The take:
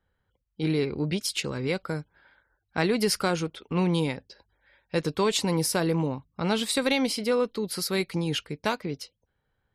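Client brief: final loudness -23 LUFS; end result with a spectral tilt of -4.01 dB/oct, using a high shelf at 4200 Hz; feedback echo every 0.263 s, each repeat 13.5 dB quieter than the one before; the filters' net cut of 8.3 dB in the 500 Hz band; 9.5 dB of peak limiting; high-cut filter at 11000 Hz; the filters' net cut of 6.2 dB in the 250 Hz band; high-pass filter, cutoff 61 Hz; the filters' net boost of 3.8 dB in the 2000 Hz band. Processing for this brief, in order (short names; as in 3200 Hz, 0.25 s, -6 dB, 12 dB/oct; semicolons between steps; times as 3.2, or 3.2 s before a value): HPF 61 Hz; LPF 11000 Hz; bell 250 Hz -7 dB; bell 500 Hz -8 dB; bell 2000 Hz +6.5 dB; high shelf 4200 Hz -5 dB; limiter -19.5 dBFS; feedback echo 0.263 s, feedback 21%, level -13.5 dB; gain +9 dB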